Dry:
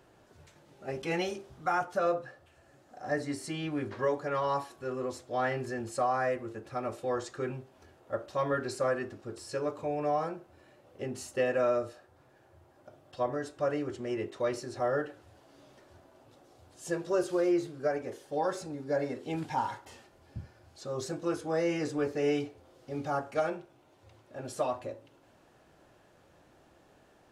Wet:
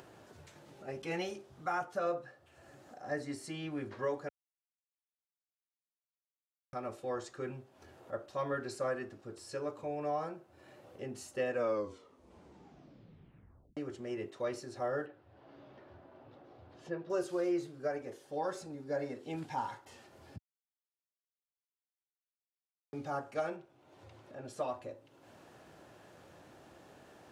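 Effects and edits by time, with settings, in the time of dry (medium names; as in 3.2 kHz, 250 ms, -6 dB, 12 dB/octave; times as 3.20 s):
4.29–6.73 s: mute
11.50 s: tape stop 2.27 s
15.06–17.10 s: distance through air 320 m
20.38–22.93 s: mute
23.56–24.68 s: treble shelf 6.9 kHz -7 dB
whole clip: high-pass 77 Hz; upward compressor, threshold -41 dBFS; trim -5.5 dB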